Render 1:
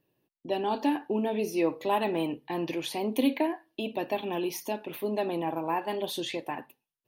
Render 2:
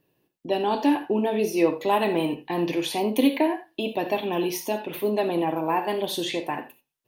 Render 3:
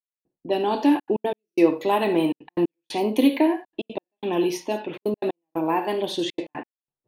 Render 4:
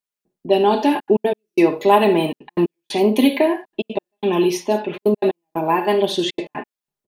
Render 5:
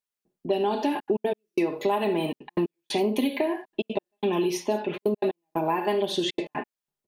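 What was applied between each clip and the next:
gated-style reverb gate 110 ms flat, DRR 7.5 dB; trim +5 dB
level-controlled noise filter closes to 680 Hz, open at -21.5 dBFS; dynamic bell 330 Hz, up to +5 dB, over -38 dBFS, Q 3.2; trance gate "...xxxxxxxxx.x.x" 181 bpm -60 dB
comb 4.9 ms, depth 62%; trim +4.5 dB
compression, threshold -19 dBFS, peak gain reduction 11 dB; trim -2.5 dB

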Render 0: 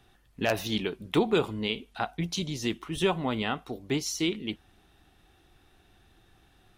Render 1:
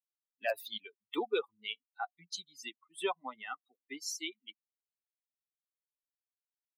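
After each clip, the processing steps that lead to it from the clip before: expander on every frequency bin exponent 3; high-pass 370 Hz 24 dB/octave; trim -1.5 dB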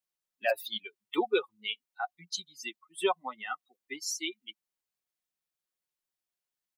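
comb 5.5 ms, depth 46%; trim +4 dB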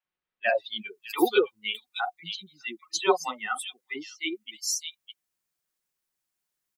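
three bands offset in time mids, lows, highs 40/610 ms, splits 650/3400 Hz; trim +7 dB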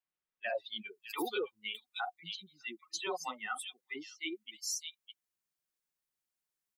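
peak limiter -19.5 dBFS, peak gain reduction 11.5 dB; trim -7 dB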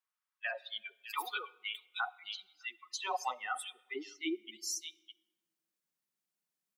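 high-pass sweep 1.1 kHz -> 180 Hz, 2.73–4.84 s; on a send at -20 dB: reverberation RT60 1.2 s, pre-delay 3 ms; on the sum: trim -1 dB

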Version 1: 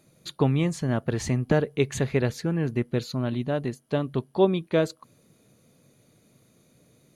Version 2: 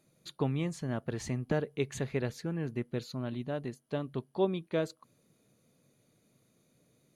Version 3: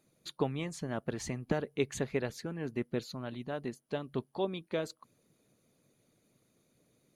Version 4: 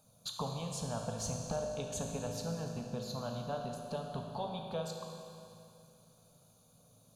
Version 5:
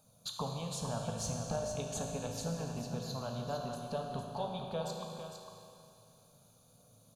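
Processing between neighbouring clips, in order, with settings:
peaking EQ 73 Hz -4 dB 0.96 oct; trim -8.5 dB
harmonic-percussive split percussive +8 dB; trim -6 dB
compression 2.5:1, threshold -43 dBFS, peak gain reduction 12 dB; static phaser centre 830 Hz, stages 4; reverberation RT60 2.7 s, pre-delay 18 ms, DRR 2 dB; trim +8 dB
delay 455 ms -7 dB

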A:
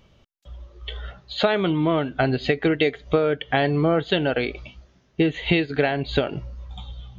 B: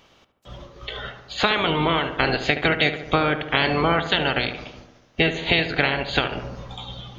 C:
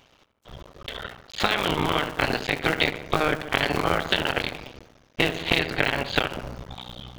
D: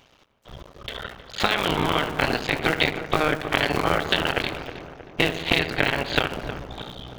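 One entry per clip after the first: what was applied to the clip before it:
spectral peaks clipped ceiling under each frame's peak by 20 dB; filtered feedback delay 73 ms, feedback 68%, low-pass 2.1 kHz, level -10 dB
cycle switcher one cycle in 2, muted
filtered feedback delay 315 ms, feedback 57%, low-pass 1.6 kHz, level -10.5 dB; trim +1 dB

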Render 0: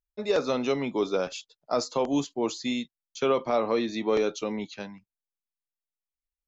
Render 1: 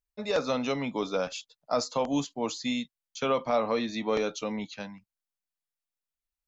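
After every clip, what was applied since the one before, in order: peaking EQ 370 Hz -13 dB 0.3 oct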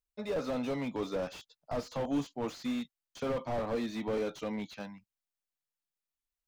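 slew-rate limiter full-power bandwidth 25 Hz; trim -3 dB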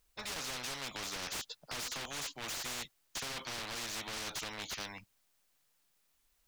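spectrum-flattening compressor 10:1; trim -3.5 dB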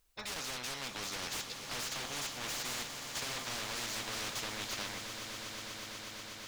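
echo with a slow build-up 122 ms, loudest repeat 8, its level -13.5 dB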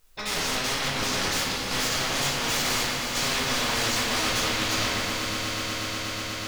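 reverberation RT60 2.2 s, pre-delay 6 ms, DRR -5.5 dB; trim +7.5 dB

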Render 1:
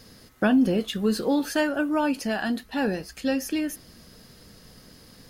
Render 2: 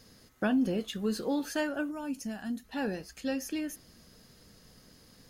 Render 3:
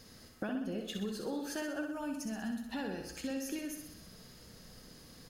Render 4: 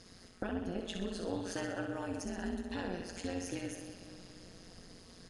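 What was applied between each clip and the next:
time-frequency box 1.91–2.64 s, 300–5200 Hz -9 dB; peaking EQ 6.6 kHz +4.5 dB 0.2 oct; trim -7.5 dB
compression 6:1, threshold -38 dBFS, peak gain reduction 13.5 dB; on a send: feedback delay 63 ms, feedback 60%, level -6 dB; on the sum: trim +1.5 dB
reverberation RT60 3.2 s, pre-delay 59 ms, DRR 7 dB; resampled via 22.05 kHz; AM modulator 180 Hz, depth 80%; trim +3 dB

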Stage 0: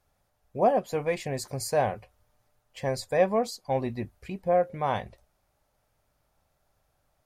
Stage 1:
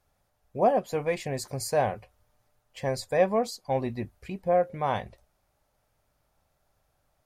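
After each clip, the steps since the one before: no audible change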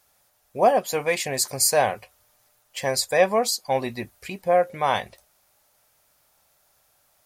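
tilt EQ +3 dB/octave; trim +6.5 dB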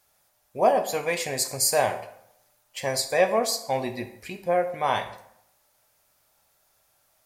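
plate-style reverb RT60 0.74 s, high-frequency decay 0.7×, pre-delay 0 ms, DRR 6.5 dB; trim -3 dB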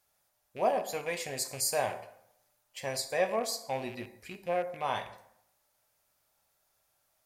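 rattle on loud lows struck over -39 dBFS, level -29 dBFS; trim -8 dB

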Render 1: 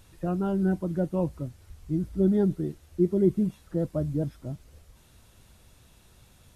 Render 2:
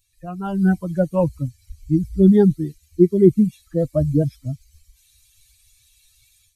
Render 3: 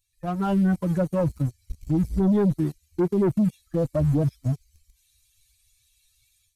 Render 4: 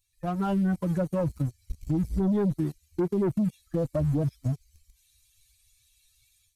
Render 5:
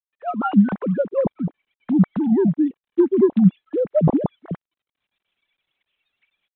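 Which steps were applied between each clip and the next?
expander on every frequency bin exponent 2; level rider gain up to 12 dB; trim +1.5 dB
waveshaping leveller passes 2; peak limiter -12 dBFS, peak gain reduction 10.5 dB; trim -4 dB
compression 2:1, threshold -26 dBFS, peak gain reduction 4.5 dB
formants replaced by sine waves; trim +8 dB; G.726 40 kbps 8 kHz

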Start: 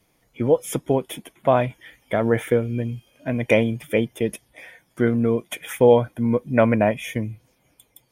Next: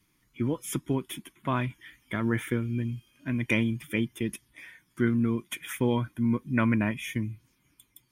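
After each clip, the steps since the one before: high-order bell 600 Hz -15 dB 1.1 oct; trim -4 dB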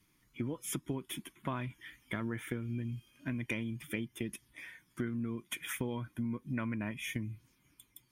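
compression 6:1, threshold -32 dBFS, peak gain reduction 12 dB; trim -1.5 dB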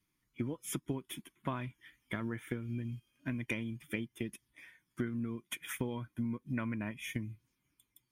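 upward expansion 1.5:1, over -55 dBFS; trim +1.5 dB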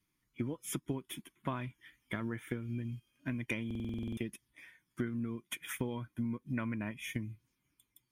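buffer glitch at 3.66 s, samples 2048, times 10

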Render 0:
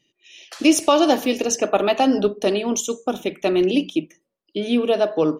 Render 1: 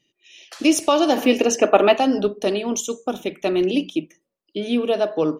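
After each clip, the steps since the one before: time-frequency box 1.17–1.97 s, 200–3200 Hz +6 dB; trim -1.5 dB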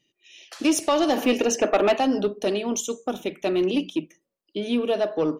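saturation -10.5 dBFS, distortion -15 dB; trim -2 dB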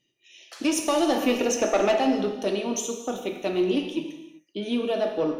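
gated-style reverb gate 420 ms falling, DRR 3.5 dB; trim -3 dB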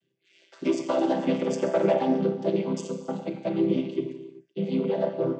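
vocoder on a held chord major triad, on C3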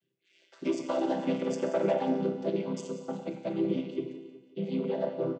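feedback delay 180 ms, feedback 48%, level -14 dB; trim -5 dB

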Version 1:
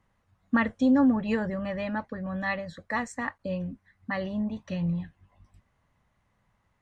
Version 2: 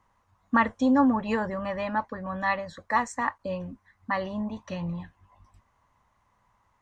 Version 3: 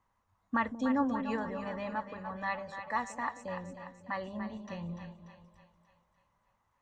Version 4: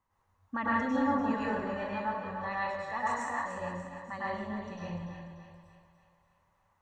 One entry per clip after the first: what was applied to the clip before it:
fifteen-band graphic EQ 160 Hz -5 dB, 1 kHz +11 dB, 6.3 kHz +5 dB
two-band feedback delay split 570 Hz, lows 183 ms, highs 293 ms, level -8.5 dB; trim -8.5 dB
plate-style reverb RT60 0.82 s, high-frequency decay 0.75×, pre-delay 90 ms, DRR -7 dB; trim -5 dB

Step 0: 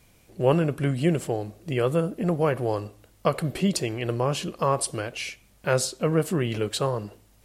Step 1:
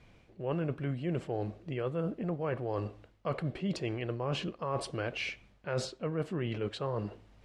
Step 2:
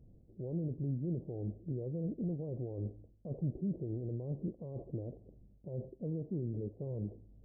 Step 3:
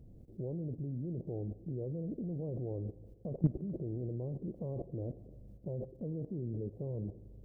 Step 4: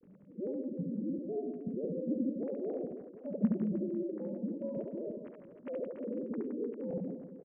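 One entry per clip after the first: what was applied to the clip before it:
low-pass 3.2 kHz 12 dB/octave; reverse; compression 6:1, threshold -31 dBFS, peak gain reduction 15.5 dB; reverse
peak limiter -28.5 dBFS, peak gain reduction 7.5 dB; Gaussian low-pass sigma 19 samples; trim +2 dB
level held to a coarse grid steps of 16 dB; spring tank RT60 2.8 s, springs 40/45 ms, chirp 35 ms, DRR 19.5 dB; trim +10 dB
formants replaced by sine waves; on a send: reverse bouncing-ball echo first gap 70 ms, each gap 1.4×, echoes 5

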